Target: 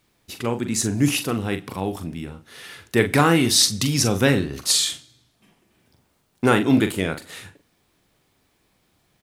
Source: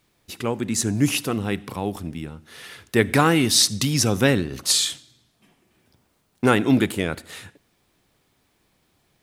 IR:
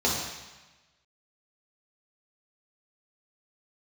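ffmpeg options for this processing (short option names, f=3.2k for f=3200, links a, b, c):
-filter_complex "[0:a]asplit=2[a][b];[b]adelay=42,volume=-8.5dB[c];[a][c]amix=inputs=2:normalize=0"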